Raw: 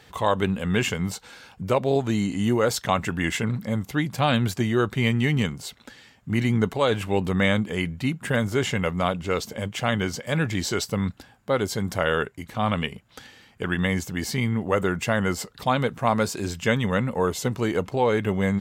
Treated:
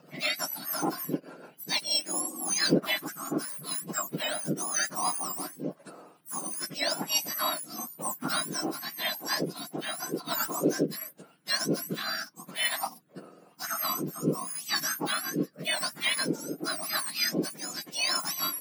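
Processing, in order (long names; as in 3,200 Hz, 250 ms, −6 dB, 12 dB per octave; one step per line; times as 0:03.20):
frequency axis turned over on the octave scale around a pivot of 1,500 Hz
rotating-speaker cabinet horn 6.7 Hz, later 0.9 Hz, at 0:01.63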